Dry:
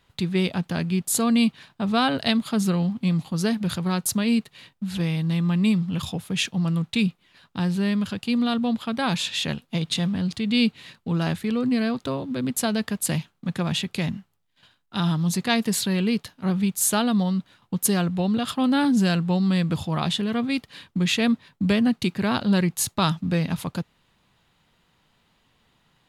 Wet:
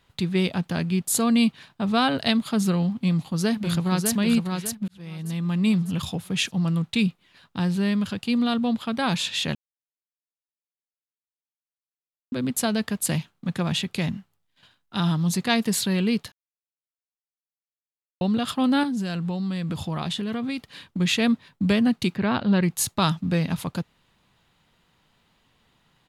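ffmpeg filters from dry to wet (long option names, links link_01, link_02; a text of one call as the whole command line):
ffmpeg -i in.wav -filter_complex "[0:a]asplit=2[link_01][link_02];[link_02]afade=type=in:start_time=2.94:duration=0.01,afade=type=out:start_time=4.14:duration=0.01,aecho=0:1:600|1200|1800|2400:0.595662|0.208482|0.0729686|0.025539[link_03];[link_01][link_03]amix=inputs=2:normalize=0,asettb=1/sr,asplit=3[link_04][link_05][link_06];[link_04]atrim=end=18.834[link_07];[link_05]atrim=start=18.83:end=21,asetpts=PTS-STARTPTS,afade=type=in:duration=0.004:curve=qsin,afade=type=out:start_time=2.166:duration=0.004:curve=qsin,acompressor=threshold=-24dB:ratio=10:attack=3.2:release=140:knee=1:detection=peak[link_08];[link_06]atrim=start=20.996[link_09];[link_07][link_08]acrossfade=duration=0.004:curve1=hsin:curve2=qsin[link_10];[link_10][link_09]acrossfade=duration=0.004:curve1=qsin:curve2=hsin,asettb=1/sr,asplit=3[link_11][link_12][link_13];[link_11]atrim=end=22.164[link_14];[link_12]atrim=start=22.16:end=22.63,asetpts=PTS-STARTPTS,afade=type=in:duration=0.004:curve=qsin,afade=type=out:start_time=0.466:duration=0.004:curve=qsin,lowpass=3200[link_15];[link_13]atrim=start=22.626[link_16];[link_14][link_15]acrossfade=duration=0.004:curve1=hsin:curve2=qsin[link_17];[link_17][link_16]acrossfade=duration=0.004:curve1=qsin:curve2=hsin,asplit=6[link_18][link_19][link_20][link_21][link_22][link_23];[link_18]atrim=end=4.88,asetpts=PTS-STARTPTS,afade=type=out:start_time=4.876:duration=0.004:curve=hsin[link_24];[link_19]atrim=start=4.88:end=9.55,asetpts=PTS-STARTPTS,afade=type=in:duration=0.86,afade=type=out:start_time=4.666:duration=0.004:curve=hsin[link_25];[link_20]atrim=start=9.55:end=12.32,asetpts=PTS-STARTPTS,volume=0[link_26];[link_21]atrim=start=12.32:end=16.32,asetpts=PTS-STARTPTS,afade=type=in:duration=0.004:curve=hsin,afade=type=out:start_time=3.996:duration=0.004:curve=hsin[link_27];[link_22]atrim=start=16.32:end=18.21,asetpts=PTS-STARTPTS,volume=0[link_28];[link_23]atrim=start=18.21,asetpts=PTS-STARTPTS,afade=type=in:duration=0.004:curve=hsin[link_29];[link_24][link_25][link_26][link_27][link_28][link_29]concat=n=6:v=0:a=1" out.wav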